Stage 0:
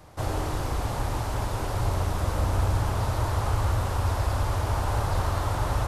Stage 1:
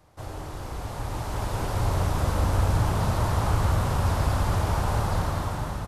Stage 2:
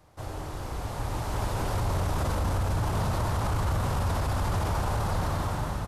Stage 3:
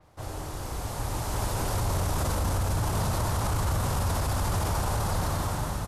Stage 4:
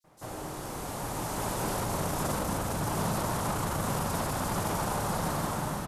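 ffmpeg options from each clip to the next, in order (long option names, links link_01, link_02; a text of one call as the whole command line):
ffmpeg -i in.wav -filter_complex "[0:a]dynaudnorm=framelen=510:gausssize=5:maxgain=11.5dB,asplit=6[link_01][link_02][link_03][link_04][link_05][link_06];[link_02]adelay=207,afreqshift=56,volume=-11.5dB[link_07];[link_03]adelay=414,afreqshift=112,volume=-17.5dB[link_08];[link_04]adelay=621,afreqshift=168,volume=-23.5dB[link_09];[link_05]adelay=828,afreqshift=224,volume=-29.6dB[link_10];[link_06]adelay=1035,afreqshift=280,volume=-35.6dB[link_11];[link_01][link_07][link_08][link_09][link_10][link_11]amix=inputs=6:normalize=0,volume=-8.5dB" out.wav
ffmpeg -i in.wav -af "alimiter=limit=-20dB:level=0:latency=1:release=14" out.wav
ffmpeg -i in.wav -af "adynamicequalizer=threshold=0.00158:dfrequency=4700:dqfactor=0.7:tfrequency=4700:tqfactor=0.7:attack=5:release=100:ratio=0.375:range=4:mode=boostabove:tftype=highshelf" out.wav
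ffmpeg -i in.wav -filter_complex "[0:a]lowshelf=frequency=120:width_type=q:width=1.5:gain=-10,acrossover=split=4600[link_01][link_02];[link_01]adelay=40[link_03];[link_03][link_02]amix=inputs=2:normalize=0" out.wav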